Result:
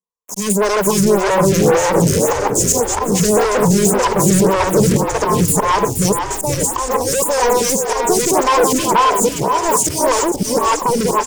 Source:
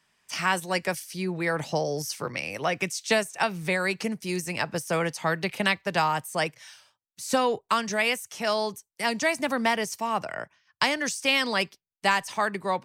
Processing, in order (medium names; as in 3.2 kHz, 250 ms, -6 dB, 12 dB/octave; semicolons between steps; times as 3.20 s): chunks repeated in reverse 392 ms, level -1 dB; rippled EQ curve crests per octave 0.74, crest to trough 15 dB; slow attack 279 ms; waveshaping leveller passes 3; Chebyshev band-stop 880–4200 Hz, order 4; waveshaping leveller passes 5; tape speed +14%; on a send: frequency-shifting echo 474 ms, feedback 55%, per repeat -46 Hz, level -6.5 dB; on the sum: lamp-driven phase shifter 1.8 Hz; trim -4 dB